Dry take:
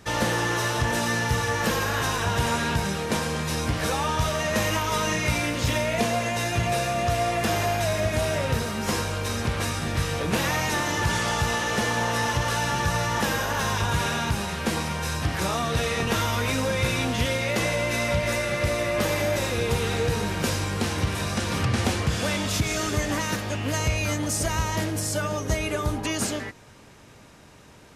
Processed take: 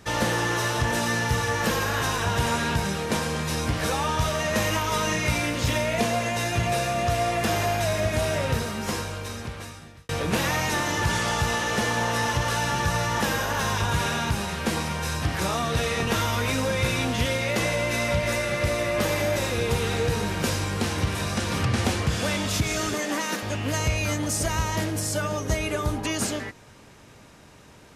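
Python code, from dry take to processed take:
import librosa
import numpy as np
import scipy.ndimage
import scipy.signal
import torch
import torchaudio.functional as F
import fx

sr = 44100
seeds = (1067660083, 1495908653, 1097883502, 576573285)

y = fx.highpass(x, sr, hz=210.0, slope=24, at=(22.94, 23.43))
y = fx.edit(y, sr, fx.fade_out_span(start_s=8.5, length_s=1.59), tone=tone)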